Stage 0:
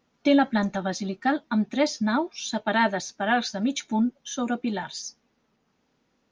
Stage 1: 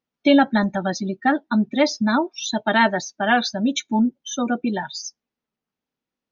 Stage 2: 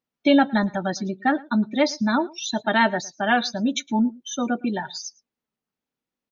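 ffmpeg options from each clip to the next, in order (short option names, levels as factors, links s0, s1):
-af "equalizer=f=3200:t=o:w=1.6:g=3,afftdn=nr=22:nf=-33,volume=1.68"
-filter_complex "[0:a]asplit=2[s0][s1];[s1]adelay=110.8,volume=0.0708,highshelf=f=4000:g=-2.49[s2];[s0][s2]amix=inputs=2:normalize=0,volume=0.794"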